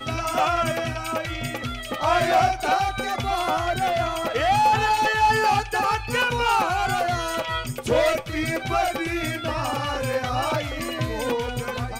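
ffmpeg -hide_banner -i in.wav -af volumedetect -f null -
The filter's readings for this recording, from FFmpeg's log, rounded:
mean_volume: -23.5 dB
max_volume: -11.6 dB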